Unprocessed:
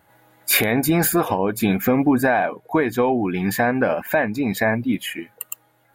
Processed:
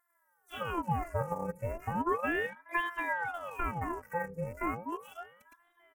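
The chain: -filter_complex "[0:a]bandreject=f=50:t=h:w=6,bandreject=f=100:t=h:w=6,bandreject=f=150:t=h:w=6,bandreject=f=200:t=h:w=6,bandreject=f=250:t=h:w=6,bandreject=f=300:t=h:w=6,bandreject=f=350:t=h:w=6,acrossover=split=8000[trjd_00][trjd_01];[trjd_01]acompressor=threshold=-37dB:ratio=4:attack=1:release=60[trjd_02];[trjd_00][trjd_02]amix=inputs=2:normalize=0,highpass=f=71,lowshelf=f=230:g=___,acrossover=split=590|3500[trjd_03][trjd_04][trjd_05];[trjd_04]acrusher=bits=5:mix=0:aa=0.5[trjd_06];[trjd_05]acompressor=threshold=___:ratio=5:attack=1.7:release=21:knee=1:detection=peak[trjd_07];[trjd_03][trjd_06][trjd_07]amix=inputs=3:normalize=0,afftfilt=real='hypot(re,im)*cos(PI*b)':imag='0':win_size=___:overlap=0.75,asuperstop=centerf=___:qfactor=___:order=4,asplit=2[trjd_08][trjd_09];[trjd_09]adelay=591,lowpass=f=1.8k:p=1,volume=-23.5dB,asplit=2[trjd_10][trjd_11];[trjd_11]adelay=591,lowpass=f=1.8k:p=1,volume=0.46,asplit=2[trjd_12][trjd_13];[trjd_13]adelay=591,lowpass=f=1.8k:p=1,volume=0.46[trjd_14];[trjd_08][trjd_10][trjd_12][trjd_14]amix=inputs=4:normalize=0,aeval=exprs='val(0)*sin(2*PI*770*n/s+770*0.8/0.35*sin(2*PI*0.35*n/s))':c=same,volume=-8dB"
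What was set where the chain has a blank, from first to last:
3, -52dB, 512, 3700, 0.66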